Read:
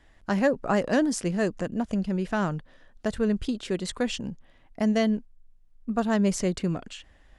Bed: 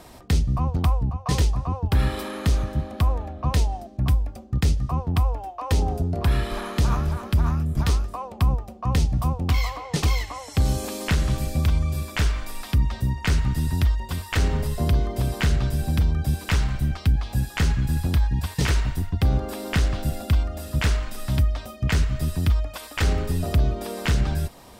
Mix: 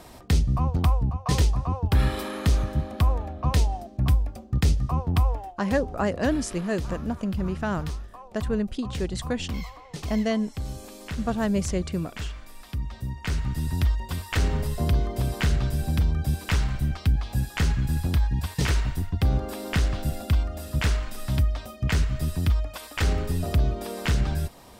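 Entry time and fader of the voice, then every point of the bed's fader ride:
5.30 s, −1.5 dB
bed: 0:05.34 −0.5 dB
0:05.77 −12 dB
0:12.54 −12 dB
0:13.89 −2 dB

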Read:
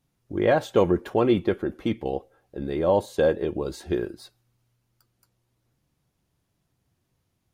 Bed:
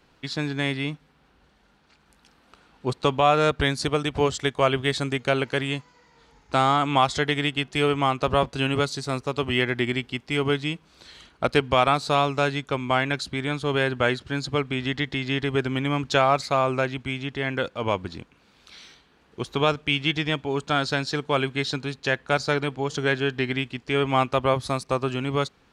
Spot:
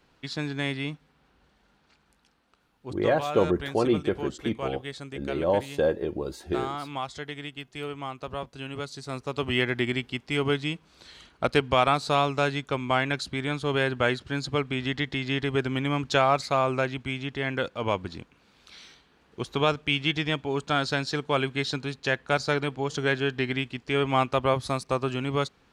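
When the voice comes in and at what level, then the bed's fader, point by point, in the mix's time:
2.60 s, −3.0 dB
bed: 0:01.91 −3.5 dB
0:02.62 −13 dB
0:08.67 −13 dB
0:09.49 −2 dB

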